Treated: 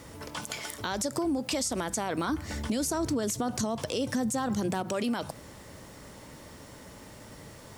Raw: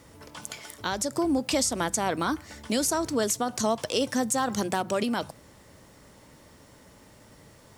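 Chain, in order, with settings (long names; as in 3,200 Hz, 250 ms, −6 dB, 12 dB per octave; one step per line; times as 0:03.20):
0:02.29–0:04.83: low-shelf EQ 300 Hz +9 dB
brickwall limiter −22 dBFS, peak gain reduction 11 dB
downward compressor 2.5 to 1, threshold −34 dBFS, peak gain reduction 6.5 dB
level +5.5 dB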